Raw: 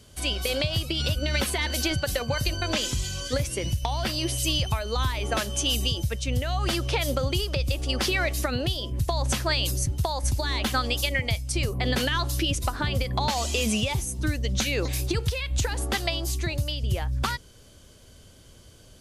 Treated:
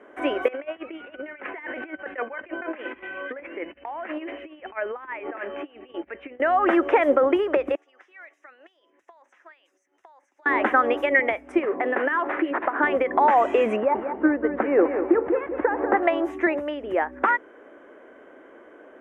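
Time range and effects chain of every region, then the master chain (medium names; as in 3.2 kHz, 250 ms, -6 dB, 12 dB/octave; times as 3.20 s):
0.48–6.40 s: four-pole ladder low-pass 3 kHz, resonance 50% + compressor with a negative ratio -39 dBFS, ratio -0.5
7.75–10.46 s: band-pass filter 6.1 kHz, Q 2.5 + compression 3:1, threshold -51 dBFS
11.59–12.83 s: high-pass 170 Hz 6 dB/octave + compression 5:1, threshold -28 dBFS + decimation joined by straight lines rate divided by 6×
13.76–16.03 s: CVSD coder 64 kbps + low-pass 1.2 kHz + feedback delay 191 ms, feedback 36%, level -8.5 dB
whole clip: elliptic band-pass 300–1900 Hz, stop band 40 dB; loudness maximiser +19.5 dB; trim -7 dB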